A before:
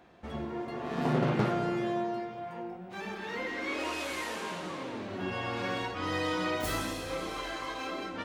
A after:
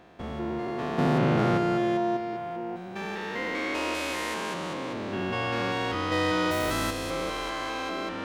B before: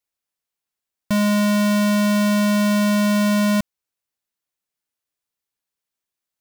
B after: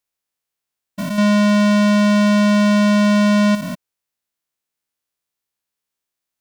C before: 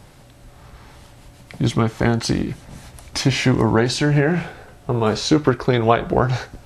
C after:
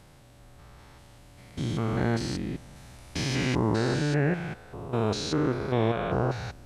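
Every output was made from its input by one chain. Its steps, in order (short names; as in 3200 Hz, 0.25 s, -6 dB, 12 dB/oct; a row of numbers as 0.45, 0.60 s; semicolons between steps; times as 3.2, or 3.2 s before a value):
stepped spectrum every 0.2 s; slew limiter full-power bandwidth 540 Hz; normalise peaks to -12 dBFS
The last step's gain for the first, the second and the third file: +6.5, +4.0, -6.0 dB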